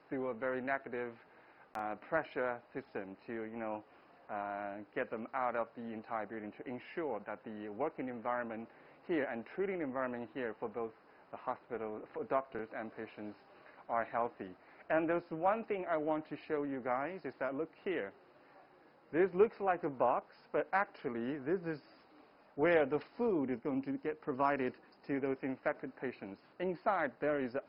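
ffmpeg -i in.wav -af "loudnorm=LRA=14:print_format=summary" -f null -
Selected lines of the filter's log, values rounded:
Input Integrated:    -37.9 LUFS
Input True Peak:     -17.1 dBTP
Input LRA:             5.8 LU
Input Threshold:     -48.4 LUFS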